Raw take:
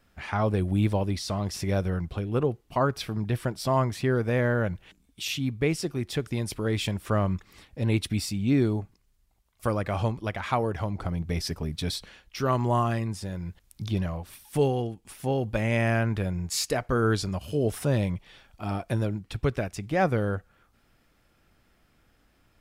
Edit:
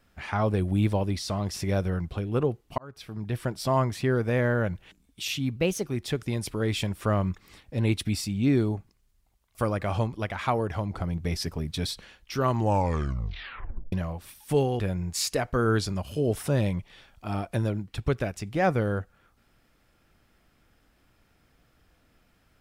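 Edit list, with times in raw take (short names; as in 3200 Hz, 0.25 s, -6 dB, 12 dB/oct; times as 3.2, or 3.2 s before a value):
2.78–3.53 fade in
5.56–5.89 speed 116%
12.56 tape stop 1.41 s
14.84–16.16 cut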